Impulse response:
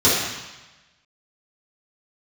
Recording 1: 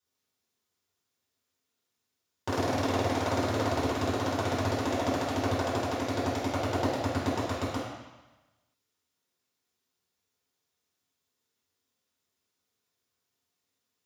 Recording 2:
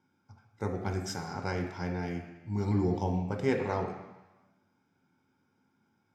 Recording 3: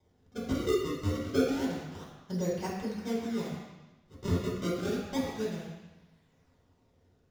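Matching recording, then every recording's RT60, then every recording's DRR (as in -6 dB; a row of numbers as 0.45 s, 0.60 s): 1; 1.1 s, 1.1 s, 1.1 s; -12.5 dB, 1.5 dB, -7.5 dB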